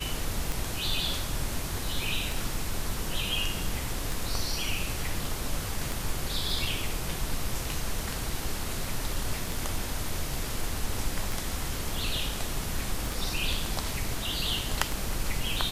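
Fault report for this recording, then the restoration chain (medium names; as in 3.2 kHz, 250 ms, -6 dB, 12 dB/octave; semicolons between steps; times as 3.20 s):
tick 33 1/3 rpm
13.06 s: pop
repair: de-click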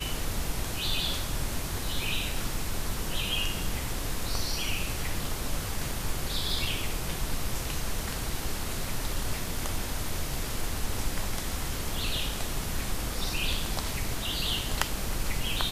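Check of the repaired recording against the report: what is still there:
13.06 s: pop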